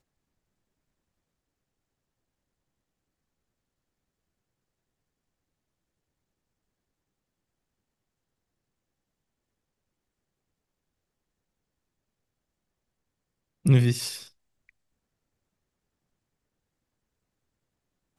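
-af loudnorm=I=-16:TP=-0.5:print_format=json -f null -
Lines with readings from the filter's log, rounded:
"input_i" : "-24.0",
"input_tp" : "-8.2",
"input_lra" : "13.6",
"input_thresh" : "-36.4",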